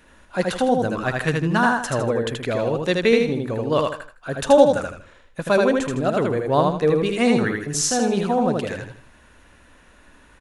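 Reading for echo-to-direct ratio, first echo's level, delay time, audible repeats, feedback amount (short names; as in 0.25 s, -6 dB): -2.5 dB, -3.0 dB, 79 ms, 4, 33%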